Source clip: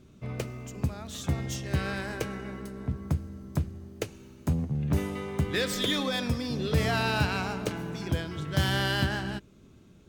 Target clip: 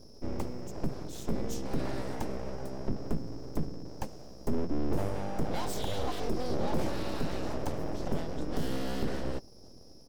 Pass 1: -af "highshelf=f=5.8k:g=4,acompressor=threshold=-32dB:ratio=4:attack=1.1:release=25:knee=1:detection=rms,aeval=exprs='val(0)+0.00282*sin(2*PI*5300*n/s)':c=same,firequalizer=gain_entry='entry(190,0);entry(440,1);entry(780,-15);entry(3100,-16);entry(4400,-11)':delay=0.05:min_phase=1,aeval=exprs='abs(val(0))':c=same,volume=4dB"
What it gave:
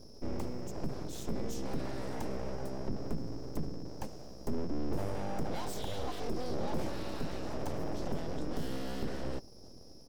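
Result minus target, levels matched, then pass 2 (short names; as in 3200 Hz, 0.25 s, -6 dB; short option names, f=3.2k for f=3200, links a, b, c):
compressor: peak gain reduction +4.5 dB
-af "highshelf=f=5.8k:g=4,acompressor=threshold=-26dB:ratio=4:attack=1.1:release=25:knee=1:detection=rms,aeval=exprs='val(0)+0.00282*sin(2*PI*5300*n/s)':c=same,firequalizer=gain_entry='entry(190,0);entry(440,1);entry(780,-15);entry(3100,-16);entry(4400,-11)':delay=0.05:min_phase=1,aeval=exprs='abs(val(0))':c=same,volume=4dB"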